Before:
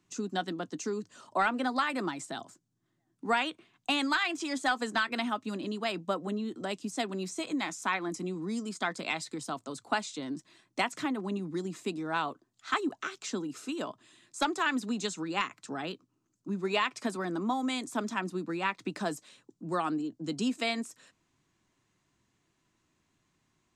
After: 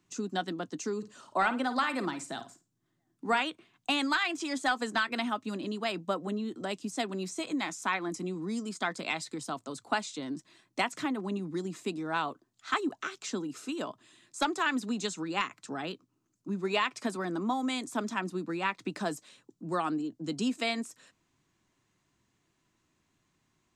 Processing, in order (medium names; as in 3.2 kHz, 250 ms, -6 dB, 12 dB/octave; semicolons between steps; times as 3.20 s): 0.97–3.40 s: flutter echo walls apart 9.1 m, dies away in 0.26 s